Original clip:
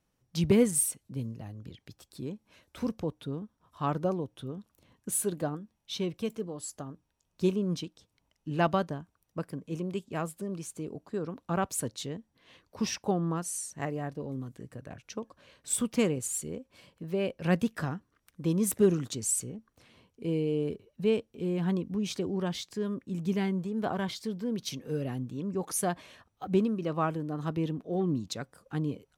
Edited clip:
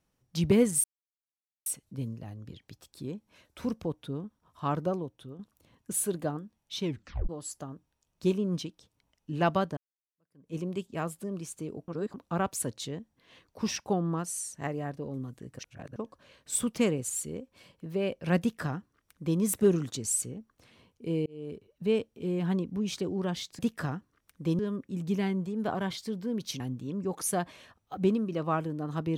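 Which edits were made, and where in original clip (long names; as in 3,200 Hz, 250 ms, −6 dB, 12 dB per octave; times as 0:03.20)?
0:00.84: splice in silence 0.82 s
0:04.00–0:04.57: fade out linear, to −8 dB
0:06.02: tape stop 0.45 s
0:08.95–0:09.72: fade in exponential
0:11.06–0:11.32: reverse
0:14.77–0:15.14: reverse
0:17.58–0:18.58: duplicate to 0:22.77
0:20.44–0:21.24: fade in equal-power
0:24.78–0:25.10: remove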